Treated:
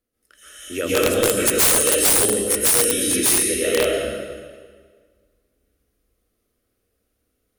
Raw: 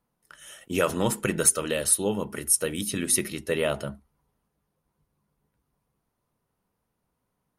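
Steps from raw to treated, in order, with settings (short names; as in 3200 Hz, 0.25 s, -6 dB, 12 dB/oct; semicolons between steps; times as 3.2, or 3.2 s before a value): fixed phaser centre 380 Hz, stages 4; plate-style reverb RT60 1.7 s, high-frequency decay 0.85×, pre-delay 0.115 s, DRR -9.5 dB; wrapped overs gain 9 dB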